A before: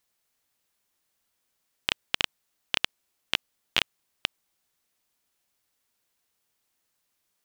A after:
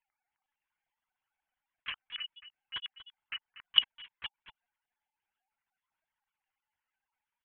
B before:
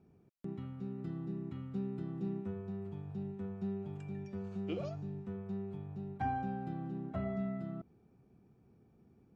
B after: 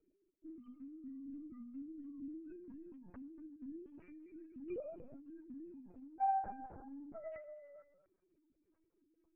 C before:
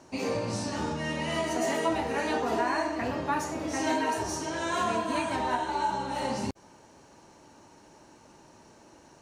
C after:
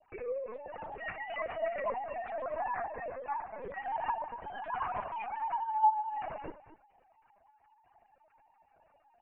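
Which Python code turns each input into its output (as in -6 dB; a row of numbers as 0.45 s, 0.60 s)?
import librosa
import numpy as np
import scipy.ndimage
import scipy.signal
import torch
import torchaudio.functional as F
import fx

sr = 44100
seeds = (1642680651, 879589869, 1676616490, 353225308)

y = fx.sine_speech(x, sr)
y = scipy.signal.sosfilt(scipy.signal.butter(2, 2400.0, 'lowpass', fs=sr, output='sos'), y)
y = fx.hum_notches(y, sr, base_hz=50, count=6)
y = y + 10.0 ** (-13.5 / 20.0) * np.pad(y, (int(235 * sr / 1000.0), 0))[:len(y)]
y = fx.lpc_vocoder(y, sr, seeds[0], excitation='pitch_kept', order=10)
y = y * 10.0 ** (-6.0 / 20.0)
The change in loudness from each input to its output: -4.0 LU, -5.5 LU, -6.0 LU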